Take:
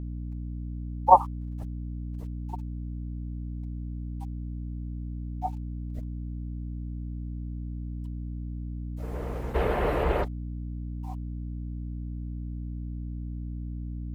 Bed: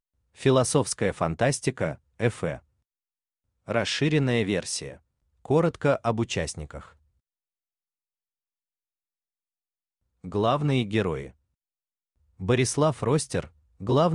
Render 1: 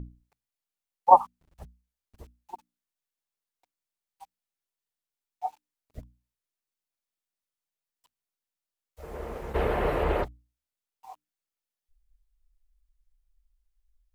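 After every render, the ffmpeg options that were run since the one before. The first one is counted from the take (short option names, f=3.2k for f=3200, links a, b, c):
-af "bandreject=f=60:t=h:w=6,bandreject=f=120:t=h:w=6,bandreject=f=180:t=h:w=6,bandreject=f=240:t=h:w=6,bandreject=f=300:t=h:w=6"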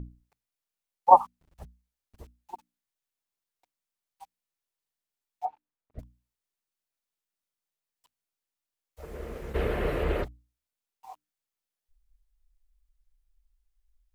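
-filter_complex "[0:a]asettb=1/sr,asplit=3[a][b][c];[a]atrim=end=5.454[d];[b]atrim=start=5.45:end=5.99,asetpts=PTS-STARTPTS,afade=t=in:d=0.004:c=qsin,afade=t=out:st=0.536:d=0.004:c=qsin,lowpass=1.7k[e];[c]atrim=start=5.986[f];[d][e]acrossfade=d=0.004:c1=hsin:c2=qsin[g];[g][f]acrossfade=d=0.004:c1=qsin:c2=hsin,asettb=1/sr,asplit=3[h][i][j];[h]atrim=end=9.054[k];[i]atrim=start=9.05:end=10.26,asetpts=PTS-STARTPTS,afade=t=in:d=0.004:c=qsin,afade=t=out:st=1.206:d=0.004:c=qsin,equalizer=f=870:w=1.5:g=-9.5[l];[j]atrim=start=10.256[m];[k][l]acrossfade=d=0.004:c1=hsin:c2=qsin[n];[n][m]acrossfade=d=0.004:c1=qsin:c2=hsin"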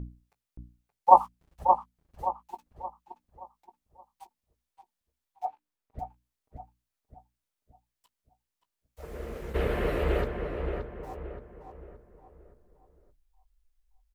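-filter_complex "[0:a]asplit=2[a][b];[b]adelay=17,volume=-12dB[c];[a][c]amix=inputs=2:normalize=0,asplit=2[d][e];[e]adelay=574,lowpass=f=1.9k:p=1,volume=-5dB,asplit=2[f][g];[g]adelay=574,lowpass=f=1.9k:p=1,volume=0.42,asplit=2[h][i];[i]adelay=574,lowpass=f=1.9k:p=1,volume=0.42,asplit=2[j][k];[k]adelay=574,lowpass=f=1.9k:p=1,volume=0.42,asplit=2[l][m];[m]adelay=574,lowpass=f=1.9k:p=1,volume=0.42[n];[d][f][h][j][l][n]amix=inputs=6:normalize=0"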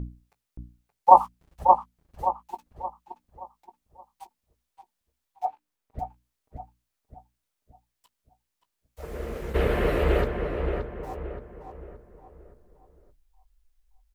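-af "volume=4.5dB,alimiter=limit=-2dB:level=0:latency=1"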